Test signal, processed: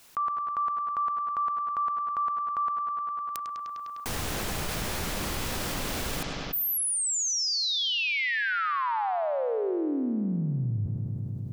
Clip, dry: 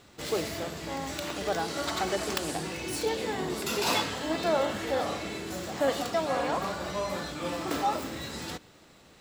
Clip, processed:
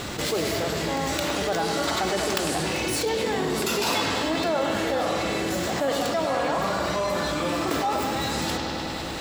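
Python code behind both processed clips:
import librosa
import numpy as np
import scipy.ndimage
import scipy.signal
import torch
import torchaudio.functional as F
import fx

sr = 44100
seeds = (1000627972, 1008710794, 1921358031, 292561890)

y = fx.echo_bbd(x, sr, ms=101, stages=4096, feedback_pct=75, wet_db=-10.5)
y = fx.env_flatten(y, sr, amount_pct=70)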